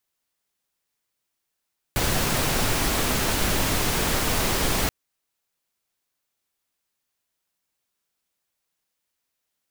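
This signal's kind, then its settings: noise pink, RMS -23 dBFS 2.93 s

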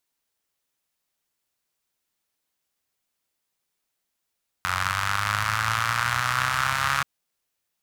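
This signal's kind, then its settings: four-cylinder engine model, changing speed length 2.38 s, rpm 2700, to 4200, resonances 100/1300 Hz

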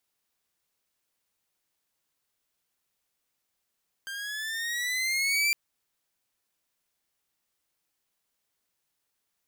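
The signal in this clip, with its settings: gliding synth tone saw, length 1.46 s, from 1580 Hz, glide +7 st, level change +13 dB, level -19 dB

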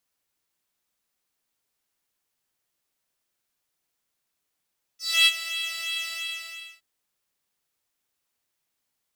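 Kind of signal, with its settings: synth patch with pulse-width modulation E5, sub -14 dB, filter highpass, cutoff 2800 Hz, Q 4.1, filter envelope 1 oct, filter decay 0.17 s, filter sustain 10%, attack 0.27 s, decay 0.05 s, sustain -13 dB, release 0.74 s, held 1.08 s, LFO 2.9 Hz, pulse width 16%, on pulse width 6%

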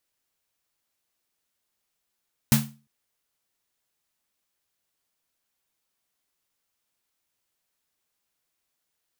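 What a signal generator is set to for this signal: snare drum length 0.35 s, tones 140 Hz, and 220 Hz, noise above 500 Hz, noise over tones -3.5 dB, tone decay 0.35 s, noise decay 0.28 s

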